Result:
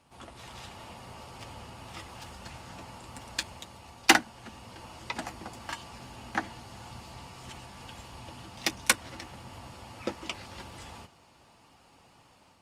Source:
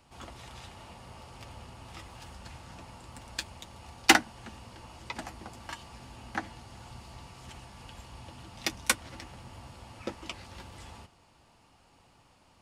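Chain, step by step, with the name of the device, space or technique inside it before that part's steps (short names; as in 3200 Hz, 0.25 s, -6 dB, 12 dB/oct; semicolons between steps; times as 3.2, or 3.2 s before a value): video call (HPF 100 Hz 6 dB/oct; AGC gain up to 3.5 dB; Opus 32 kbps 48000 Hz)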